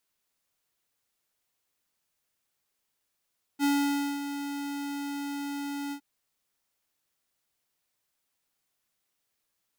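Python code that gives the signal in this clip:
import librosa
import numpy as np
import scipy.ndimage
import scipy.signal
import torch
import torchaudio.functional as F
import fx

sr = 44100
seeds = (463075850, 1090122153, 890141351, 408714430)

y = fx.adsr_tone(sr, wave='square', hz=284.0, attack_ms=48.0, decay_ms=553.0, sustain_db=-10.5, held_s=2.33, release_ms=82.0, level_db=-24.0)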